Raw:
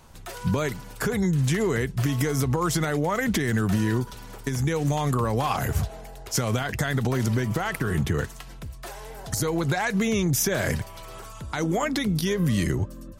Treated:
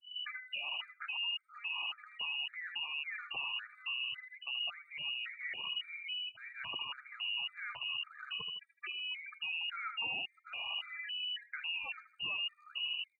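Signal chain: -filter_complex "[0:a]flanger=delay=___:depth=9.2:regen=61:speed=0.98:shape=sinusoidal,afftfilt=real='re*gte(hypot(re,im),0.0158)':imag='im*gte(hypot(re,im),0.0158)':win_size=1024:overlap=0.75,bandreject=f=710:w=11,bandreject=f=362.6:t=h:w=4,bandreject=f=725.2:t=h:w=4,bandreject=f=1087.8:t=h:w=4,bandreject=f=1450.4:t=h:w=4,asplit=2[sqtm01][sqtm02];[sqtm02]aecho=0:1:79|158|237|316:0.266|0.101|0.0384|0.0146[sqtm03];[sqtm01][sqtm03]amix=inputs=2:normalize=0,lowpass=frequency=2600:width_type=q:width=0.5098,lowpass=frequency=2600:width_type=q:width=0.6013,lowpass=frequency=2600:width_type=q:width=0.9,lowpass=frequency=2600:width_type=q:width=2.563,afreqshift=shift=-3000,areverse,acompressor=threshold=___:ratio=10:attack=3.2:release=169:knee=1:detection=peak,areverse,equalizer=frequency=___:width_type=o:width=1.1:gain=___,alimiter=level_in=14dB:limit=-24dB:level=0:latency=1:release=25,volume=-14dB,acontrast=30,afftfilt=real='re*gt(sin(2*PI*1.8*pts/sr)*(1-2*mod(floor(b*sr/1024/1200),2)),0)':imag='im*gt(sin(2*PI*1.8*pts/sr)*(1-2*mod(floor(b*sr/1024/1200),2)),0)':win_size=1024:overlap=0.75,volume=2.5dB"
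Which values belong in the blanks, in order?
2.2, -41dB, 130, 11.5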